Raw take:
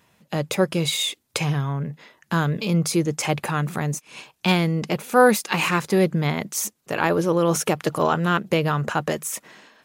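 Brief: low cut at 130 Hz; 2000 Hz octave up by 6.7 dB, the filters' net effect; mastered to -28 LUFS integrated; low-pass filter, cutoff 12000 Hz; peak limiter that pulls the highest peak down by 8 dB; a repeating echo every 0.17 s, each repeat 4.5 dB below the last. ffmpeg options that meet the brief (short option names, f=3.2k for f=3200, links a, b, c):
-af "highpass=130,lowpass=12k,equalizer=f=2k:t=o:g=9,alimiter=limit=-8.5dB:level=0:latency=1,aecho=1:1:170|340|510|680|850|1020|1190|1360|1530:0.596|0.357|0.214|0.129|0.0772|0.0463|0.0278|0.0167|0.01,volume=-7dB"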